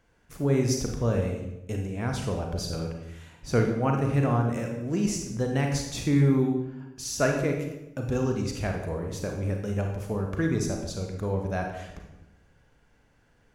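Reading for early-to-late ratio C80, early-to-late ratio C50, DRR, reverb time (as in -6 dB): 7.0 dB, 4.0 dB, 2.0 dB, 0.90 s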